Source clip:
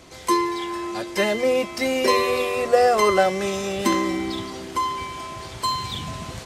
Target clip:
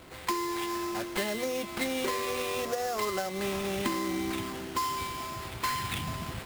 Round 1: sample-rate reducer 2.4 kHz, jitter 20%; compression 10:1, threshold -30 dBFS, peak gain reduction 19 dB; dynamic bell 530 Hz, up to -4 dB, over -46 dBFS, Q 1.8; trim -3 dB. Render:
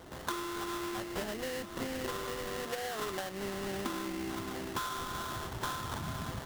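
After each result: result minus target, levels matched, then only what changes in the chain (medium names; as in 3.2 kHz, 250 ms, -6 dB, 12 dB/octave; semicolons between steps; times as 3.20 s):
compression: peak gain reduction +6.5 dB; sample-rate reducer: distortion +7 dB
change: compression 10:1, threshold -23 dBFS, peak gain reduction 12.5 dB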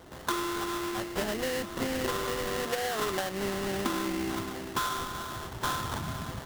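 sample-rate reducer: distortion +7 dB
change: sample-rate reducer 6.1 kHz, jitter 20%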